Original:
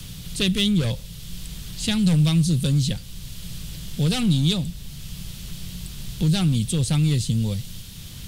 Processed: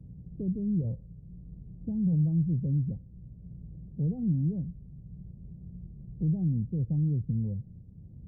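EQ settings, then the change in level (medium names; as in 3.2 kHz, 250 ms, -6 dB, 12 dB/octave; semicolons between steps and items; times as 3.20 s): Gaussian low-pass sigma 18 samples; high-pass 49 Hz; -6.5 dB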